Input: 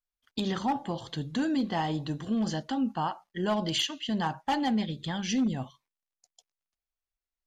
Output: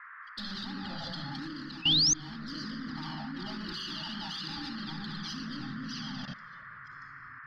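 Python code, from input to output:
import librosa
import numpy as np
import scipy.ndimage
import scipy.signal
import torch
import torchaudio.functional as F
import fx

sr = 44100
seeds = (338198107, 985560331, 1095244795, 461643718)

y = fx.reverse_delay(x, sr, ms=510, wet_db=-2)
y = np.clip(y, -10.0 ** (-28.5 / 20.0), 10.0 ** (-28.5 / 20.0))
y = fx.curve_eq(y, sr, hz=(160.0, 1900.0, 4900.0, 7000.0), db=(0, -10, 9, -18))
y = fx.room_shoebox(y, sr, seeds[0], volume_m3=3700.0, walls='mixed', distance_m=2.5)
y = fx.env_flanger(y, sr, rest_ms=2.8, full_db=-20.0)
y = fx.spec_paint(y, sr, seeds[1], shape='rise', start_s=1.82, length_s=0.32, low_hz=2500.0, high_hz=6600.0, level_db=-26.0)
y = fx.high_shelf(y, sr, hz=2700.0, db=9.0)
y = fx.level_steps(y, sr, step_db=21)
y = fx.dmg_noise_band(y, sr, seeds[2], low_hz=1100.0, high_hz=1900.0, level_db=-51.0)
y = fx.rider(y, sr, range_db=3, speed_s=0.5)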